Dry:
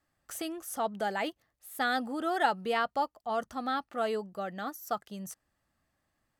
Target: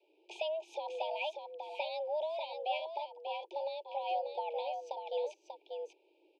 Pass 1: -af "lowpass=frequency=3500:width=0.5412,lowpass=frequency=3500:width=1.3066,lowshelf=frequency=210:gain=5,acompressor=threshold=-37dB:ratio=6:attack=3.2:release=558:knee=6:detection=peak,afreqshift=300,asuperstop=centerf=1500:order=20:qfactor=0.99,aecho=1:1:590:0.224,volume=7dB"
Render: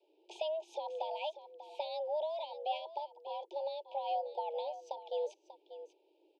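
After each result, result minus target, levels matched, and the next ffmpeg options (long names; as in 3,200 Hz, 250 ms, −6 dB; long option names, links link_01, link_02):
2,000 Hz band −8.5 dB; echo-to-direct −7 dB
-af "lowpass=frequency=3500:width=0.5412,lowpass=frequency=3500:width=1.3066,lowshelf=frequency=210:gain=5,acompressor=threshold=-37dB:ratio=6:attack=3.2:release=558:knee=6:detection=peak,afreqshift=300,asuperstop=centerf=1500:order=20:qfactor=0.99,equalizer=frequency=2400:width_type=o:width=0.35:gain=10.5,aecho=1:1:590:0.224,volume=7dB"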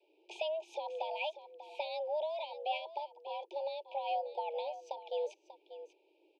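echo-to-direct −7 dB
-af "lowpass=frequency=3500:width=0.5412,lowpass=frequency=3500:width=1.3066,lowshelf=frequency=210:gain=5,acompressor=threshold=-37dB:ratio=6:attack=3.2:release=558:knee=6:detection=peak,afreqshift=300,asuperstop=centerf=1500:order=20:qfactor=0.99,equalizer=frequency=2400:width_type=o:width=0.35:gain=10.5,aecho=1:1:590:0.501,volume=7dB"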